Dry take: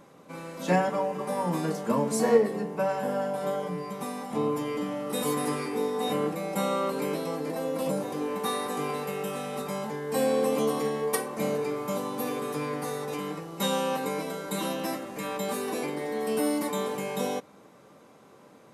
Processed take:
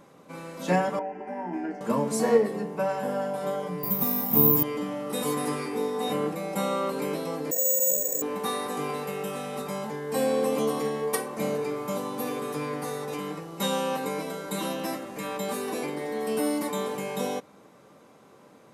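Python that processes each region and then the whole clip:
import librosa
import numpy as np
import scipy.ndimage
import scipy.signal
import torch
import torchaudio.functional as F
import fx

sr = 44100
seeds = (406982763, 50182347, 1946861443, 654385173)

y = fx.chain(x, sr, fx.air_absorb(metres=240.0),
    fx.fixed_phaser(hz=770.0, stages=8),
    fx.doubler(ms=12.0, db=-10.5), at=(0.99, 1.81))
y = fx.chain(y, sr, fx.bass_treble(bass_db=11, treble_db=7),
    fx.resample_bad(factor=3, down='filtered', up='zero_stuff'), at=(3.83, 4.63))
y = fx.chain(y, sr, fx.formant_cascade(vowel='e'),
    fx.resample_bad(factor=6, down='none', up='zero_stuff'),
    fx.env_flatten(amount_pct=50), at=(7.51, 8.22))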